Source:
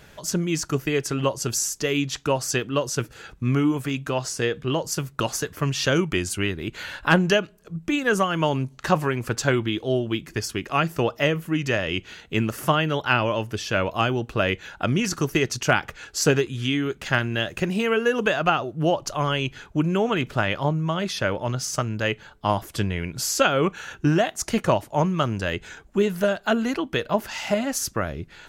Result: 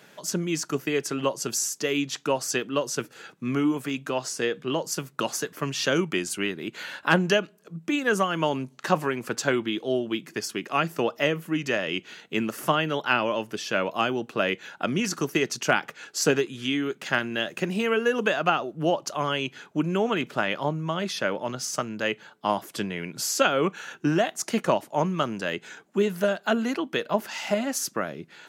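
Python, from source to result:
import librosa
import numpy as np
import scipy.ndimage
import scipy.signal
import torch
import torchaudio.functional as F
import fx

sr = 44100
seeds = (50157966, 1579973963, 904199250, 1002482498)

y = scipy.signal.sosfilt(scipy.signal.butter(4, 170.0, 'highpass', fs=sr, output='sos'), x)
y = F.gain(torch.from_numpy(y), -2.0).numpy()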